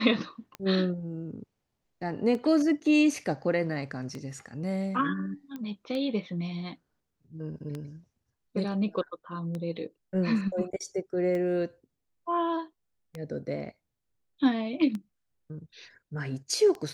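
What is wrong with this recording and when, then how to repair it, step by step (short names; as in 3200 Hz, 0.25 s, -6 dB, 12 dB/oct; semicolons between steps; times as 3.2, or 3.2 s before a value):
tick 33 1/3 rpm -23 dBFS
5.56 pop -26 dBFS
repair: de-click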